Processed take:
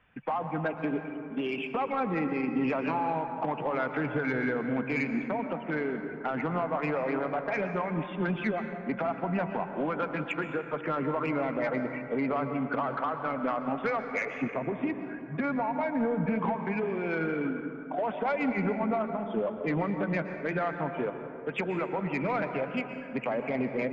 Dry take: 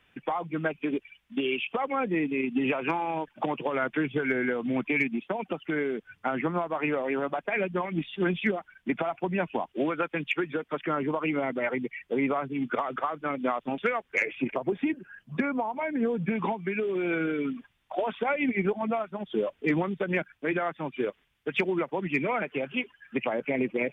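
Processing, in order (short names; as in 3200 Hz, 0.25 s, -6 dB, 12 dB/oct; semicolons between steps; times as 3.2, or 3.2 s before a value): LPF 1800 Hz 12 dB/oct; bell 350 Hz -8 dB 0.51 oct; in parallel at +1.5 dB: limiter -24 dBFS, peak gain reduction 7.5 dB; on the sum: soft clip -16 dBFS, distortion -22 dB; plate-style reverb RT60 2.7 s, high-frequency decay 0.35×, pre-delay 0.105 s, DRR 6.5 dB; gain -4.5 dB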